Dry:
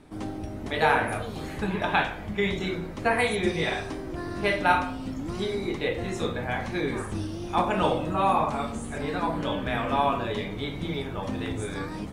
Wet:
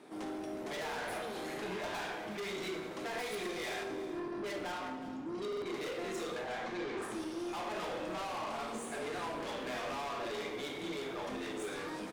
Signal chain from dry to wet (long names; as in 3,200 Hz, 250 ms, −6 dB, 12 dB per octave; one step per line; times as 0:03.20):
0:03.83–0:05.66: spectral envelope exaggerated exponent 1.5
Chebyshev high-pass filter 370 Hz, order 2
downward compressor, threshold −25 dBFS, peak gain reduction 9 dB
soft clipping −38.5 dBFS, distortion −5 dB
0:06.41–0:07.02: high-frequency loss of the air 100 metres
single-tap delay 365 ms −14.5 dB
coupled-rooms reverb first 0.83 s, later 2.1 s, DRR 5 dB
buffer that repeats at 0:05.48, samples 2,048, times 2